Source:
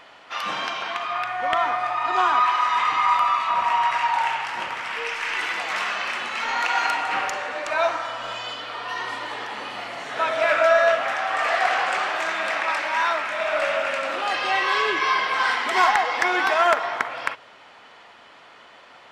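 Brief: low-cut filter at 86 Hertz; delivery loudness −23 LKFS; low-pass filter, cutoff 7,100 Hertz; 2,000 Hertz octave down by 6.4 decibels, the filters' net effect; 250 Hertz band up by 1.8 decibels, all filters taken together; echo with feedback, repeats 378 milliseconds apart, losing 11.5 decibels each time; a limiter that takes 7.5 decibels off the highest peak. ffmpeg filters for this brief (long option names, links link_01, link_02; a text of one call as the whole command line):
ffmpeg -i in.wav -af "highpass=86,lowpass=7100,equalizer=frequency=250:width_type=o:gain=3,equalizer=frequency=2000:width_type=o:gain=-8.5,alimiter=limit=-16dB:level=0:latency=1,aecho=1:1:378|756|1134:0.266|0.0718|0.0194,volume=3.5dB" out.wav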